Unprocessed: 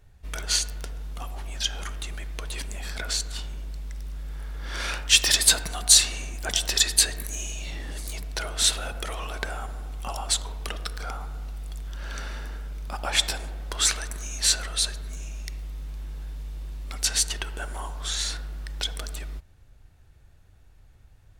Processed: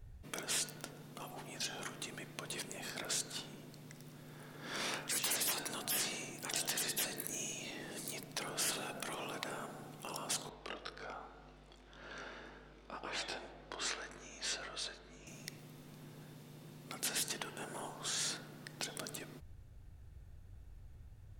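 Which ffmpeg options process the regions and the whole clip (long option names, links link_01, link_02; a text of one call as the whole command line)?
ffmpeg -i in.wav -filter_complex "[0:a]asettb=1/sr,asplit=3[link_01][link_02][link_03];[link_01]atrim=end=10.494[link_04];[link_02]atrim=start=10.49:end=15.27,asetpts=PTS-STARTPTS,afade=type=in:duration=0.004:curve=qsin,afade=type=out:start_time=4.776:duration=0.004:curve=qsin,flanger=delay=20:depth=3.1:speed=1.9,highpass=300,lowpass=4200[link_05];[link_03]atrim=start=15.266[link_06];[link_04][link_05]acrossfade=duration=0.004:curve1=hsin:curve2=qsin[link_07];[link_07][link_06]acrossfade=duration=0.004:curve1=qsin:curve2=hsin,lowshelf=frequency=480:gain=9.5,afftfilt=real='re*lt(hypot(re,im),0.1)':imag='im*lt(hypot(re,im),0.1)':win_size=1024:overlap=0.75,highshelf=frequency=9900:gain=4.5,volume=-7.5dB" out.wav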